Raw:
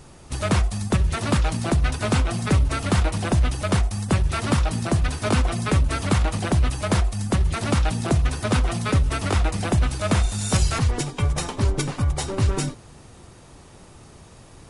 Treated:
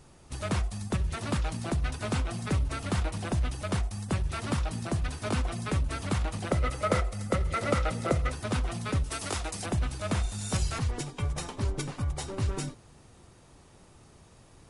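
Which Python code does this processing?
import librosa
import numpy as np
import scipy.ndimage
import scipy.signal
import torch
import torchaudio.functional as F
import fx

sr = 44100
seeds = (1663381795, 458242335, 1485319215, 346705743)

y = fx.small_body(x, sr, hz=(530.0, 1300.0, 2000.0), ring_ms=25, db=14, at=(6.51, 8.32))
y = fx.bass_treble(y, sr, bass_db=-7, treble_db=9, at=(9.04, 9.66))
y = y * 10.0 ** (-9.0 / 20.0)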